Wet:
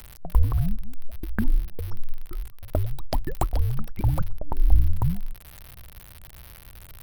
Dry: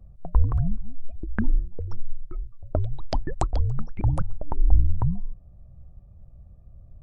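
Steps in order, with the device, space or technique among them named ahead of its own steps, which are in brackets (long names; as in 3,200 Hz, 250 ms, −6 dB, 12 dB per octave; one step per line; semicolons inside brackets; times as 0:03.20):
budget class-D amplifier (gap after every zero crossing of 0.064 ms; spike at every zero crossing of −21 dBFS)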